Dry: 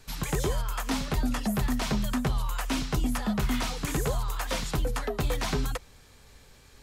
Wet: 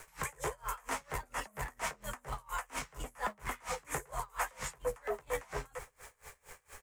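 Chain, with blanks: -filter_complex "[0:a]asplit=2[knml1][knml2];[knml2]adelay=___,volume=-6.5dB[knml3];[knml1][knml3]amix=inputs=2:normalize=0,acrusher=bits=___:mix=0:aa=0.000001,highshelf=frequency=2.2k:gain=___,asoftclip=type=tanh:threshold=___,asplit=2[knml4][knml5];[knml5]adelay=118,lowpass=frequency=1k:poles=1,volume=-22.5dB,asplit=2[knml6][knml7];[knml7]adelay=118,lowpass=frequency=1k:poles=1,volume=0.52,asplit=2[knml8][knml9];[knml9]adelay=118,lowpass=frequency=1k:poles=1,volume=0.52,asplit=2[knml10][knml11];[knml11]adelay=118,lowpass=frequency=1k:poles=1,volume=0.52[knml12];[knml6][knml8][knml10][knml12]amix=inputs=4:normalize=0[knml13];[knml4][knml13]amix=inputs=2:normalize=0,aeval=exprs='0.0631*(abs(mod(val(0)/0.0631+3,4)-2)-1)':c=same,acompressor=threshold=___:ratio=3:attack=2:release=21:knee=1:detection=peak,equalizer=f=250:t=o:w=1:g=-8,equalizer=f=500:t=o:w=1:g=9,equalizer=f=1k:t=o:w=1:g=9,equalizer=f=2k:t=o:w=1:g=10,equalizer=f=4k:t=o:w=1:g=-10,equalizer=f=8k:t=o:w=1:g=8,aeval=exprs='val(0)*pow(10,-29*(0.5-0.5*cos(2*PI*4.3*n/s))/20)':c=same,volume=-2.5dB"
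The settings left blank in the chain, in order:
14, 8, 4, -19dB, -36dB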